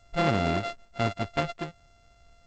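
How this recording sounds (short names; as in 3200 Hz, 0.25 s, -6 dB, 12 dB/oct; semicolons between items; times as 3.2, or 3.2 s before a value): a buzz of ramps at a fixed pitch in blocks of 64 samples; G.722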